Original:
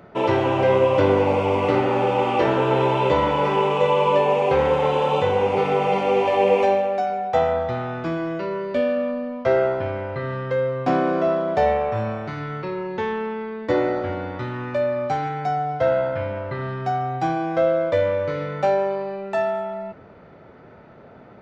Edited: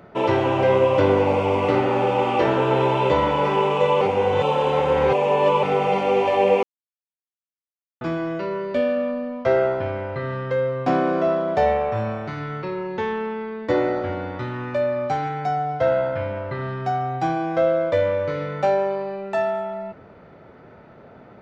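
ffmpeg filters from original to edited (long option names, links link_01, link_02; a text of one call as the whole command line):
ffmpeg -i in.wav -filter_complex "[0:a]asplit=5[link_01][link_02][link_03][link_04][link_05];[link_01]atrim=end=4.012[link_06];[link_02]atrim=start=4.008:end=5.632,asetpts=PTS-STARTPTS,areverse[link_07];[link_03]atrim=start=5.628:end=6.63,asetpts=PTS-STARTPTS,afade=type=out:start_time=0.998:duration=0.004:curve=hsin[link_08];[link_04]atrim=start=6.63:end=8.01,asetpts=PTS-STARTPTS,volume=0[link_09];[link_05]atrim=start=8.01,asetpts=PTS-STARTPTS,afade=type=in:duration=0.004:curve=hsin[link_10];[link_06][link_07]acrossfade=duration=0.004:curve1=hsin:curve2=hsin[link_11];[link_08][link_09][link_10]concat=n=3:v=0:a=1[link_12];[link_11][link_12]acrossfade=duration=0.004:curve1=hsin:curve2=hsin" out.wav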